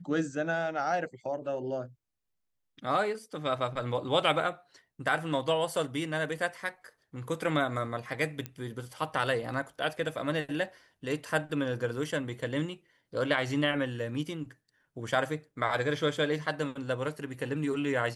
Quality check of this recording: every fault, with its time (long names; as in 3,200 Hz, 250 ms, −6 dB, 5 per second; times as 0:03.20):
0:08.46: click −21 dBFS